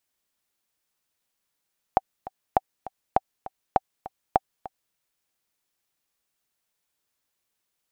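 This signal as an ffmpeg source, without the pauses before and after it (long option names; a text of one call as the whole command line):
ffmpeg -f lavfi -i "aevalsrc='pow(10,(-4.5-17.5*gte(mod(t,2*60/201),60/201))/20)*sin(2*PI*766*mod(t,60/201))*exp(-6.91*mod(t,60/201)/0.03)':duration=2.98:sample_rate=44100" out.wav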